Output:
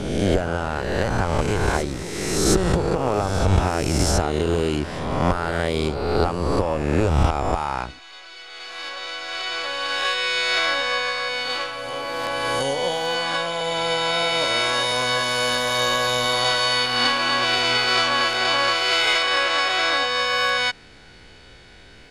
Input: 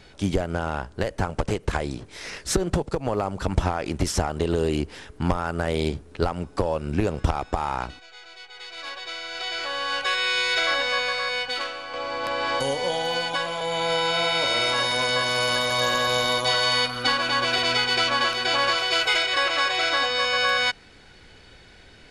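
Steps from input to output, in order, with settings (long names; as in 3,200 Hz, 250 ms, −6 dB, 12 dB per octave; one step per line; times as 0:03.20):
peak hold with a rise ahead of every peak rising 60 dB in 1.43 s
backwards echo 720 ms −13.5 dB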